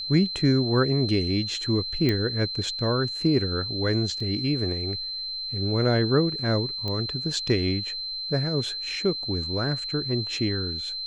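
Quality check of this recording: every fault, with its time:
tone 4100 Hz -30 dBFS
2.09 pop -12 dBFS
4.2 gap 4 ms
6.88 pop -18 dBFS

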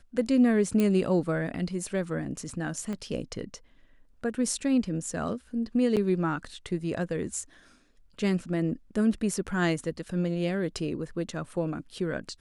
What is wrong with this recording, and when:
0.8 pop -14 dBFS
2.93 pop -23 dBFS
5.96–5.97 gap 7.6 ms

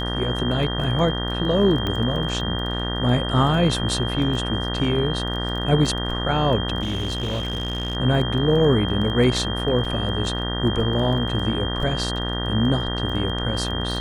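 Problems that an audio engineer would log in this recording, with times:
buzz 60 Hz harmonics 32 -27 dBFS
crackle 16/s -29 dBFS
tone 3200 Hz -29 dBFS
1.87 pop -13 dBFS
6.82–7.97 clipped -21.5 dBFS
9.85 gap 3.9 ms

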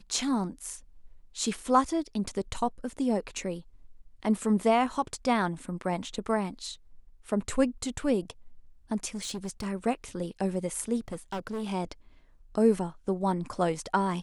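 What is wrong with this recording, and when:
9.14–9.67 clipped -30.5 dBFS
11.08–11.64 clipped -30 dBFS

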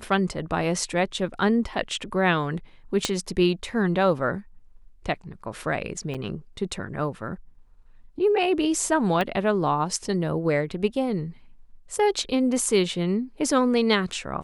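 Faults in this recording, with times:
3.05 pop -8 dBFS
6.14–6.15 gap 6.9 ms
9.21 pop -13 dBFS

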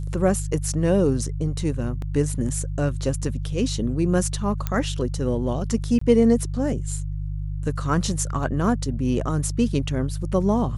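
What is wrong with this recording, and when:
hum 50 Hz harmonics 3 -28 dBFS
2.02 gap 2.1 ms
4.67 pop -11 dBFS
5.99–6.01 gap 24 ms

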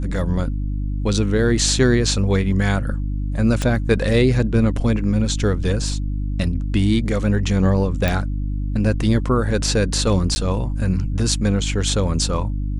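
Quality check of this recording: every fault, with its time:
hum 50 Hz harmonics 6 -23 dBFS
3.62 pop -9 dBFS
8.08 pop
10.35–10.36 gap 10 ms

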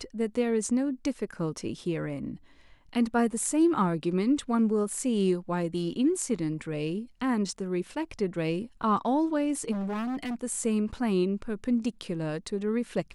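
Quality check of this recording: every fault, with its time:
9.71–10.35 clipped -29.5 dBFS

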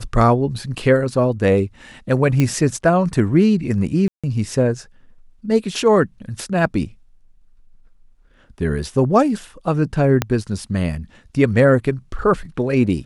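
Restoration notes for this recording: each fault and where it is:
2.4 pop -6 dBFS
4.08–4.24 gap 0.156 s
10.22 pop -3 dBFS

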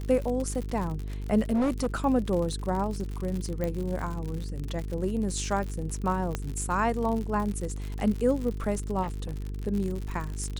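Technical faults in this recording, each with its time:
buzz 50 Hz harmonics 9 -34 dBFS
crackle 77/s -32 dBFS
1.53–1.96 clipped -22 dBFS
3.64 pop -18 dBFS
6.35 pop -15 dBFS
9.02–9.49 clipped -28.5 dBFS

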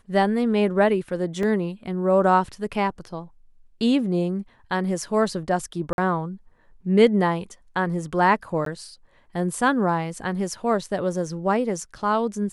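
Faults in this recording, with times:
1.43 gap 2.4 ms
5.93–5.98 gap 51 ms
8.65–8.66 gap 13 ms

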